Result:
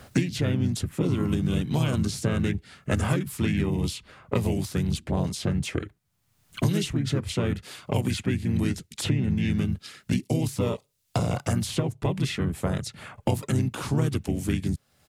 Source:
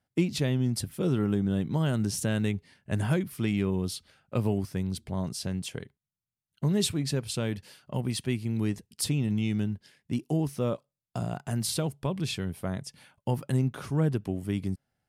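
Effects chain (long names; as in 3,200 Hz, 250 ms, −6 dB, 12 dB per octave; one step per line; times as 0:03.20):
pitch-shifted copies added −5 semitones −6 dB, −4 semitones −3 dB
multiband upward and downward compressor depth 100%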